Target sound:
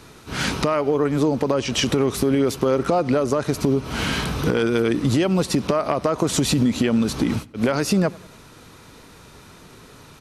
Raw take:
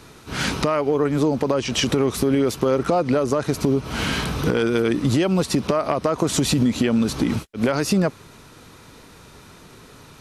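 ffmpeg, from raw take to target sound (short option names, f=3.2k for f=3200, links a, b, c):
-filter_complex "[0:a]asplit=2[a][b];[b]adelay=94,lowpass=f=3.7k:p=1,volume=-22.5dB,asplit=2[c][d];[d]adelay=94,lowpass=f=3.7k:p=1,volume=0.48,asplit=2[e][f];[f]adelay=94,lowpass=f=3.7k:p=1,volume=0.48[g];[a][c][e][g]amix=inputs=4:normalize=0"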